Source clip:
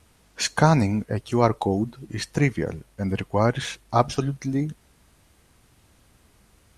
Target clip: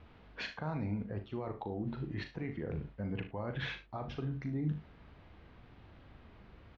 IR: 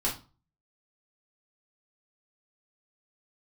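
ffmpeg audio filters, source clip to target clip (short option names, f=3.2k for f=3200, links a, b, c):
-filter_complex "[0:a]lowpass=f=3.9k:w=0.5412,lowpass=f=3.9k:w=1.3066,aemphasis=mode=reproduction:type=75kf,areverse,acompressor=threshold=-31dB:ratio=20,areverse,alimiter=level_in=7.5dB:limit=-24dB:level=0:latency=1:release=97,volume=-7.5dB,asplit=2[a][b];[b]adelay=39,volume=-8.5dB[c];[a][c]amix=inputs=2:normalize=0,asplit=2[d][e];[e]aecho=0:1:60|74:0.211|0.178[f];[d][f]amix=inputs=2:normalize=0,volume=2dB"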